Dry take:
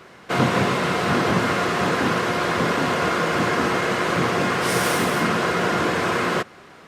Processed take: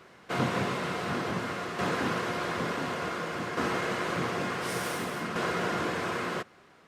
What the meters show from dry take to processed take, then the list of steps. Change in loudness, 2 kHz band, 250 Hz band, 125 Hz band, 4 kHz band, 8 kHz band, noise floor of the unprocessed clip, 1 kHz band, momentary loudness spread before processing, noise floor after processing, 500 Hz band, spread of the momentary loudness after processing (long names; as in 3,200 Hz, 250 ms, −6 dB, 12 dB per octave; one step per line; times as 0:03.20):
−10.5 dB, −10.5 dB, −10.5 dB, −10.0 dB, −10.5 dB, −11.0 dB, −46 dBFS, −10.5 dB, 2 LU, −57 dBFS, −10.0 dB, 4 LU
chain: shaped tremolo saw down 0.56 Hz, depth 50%
level −8 dB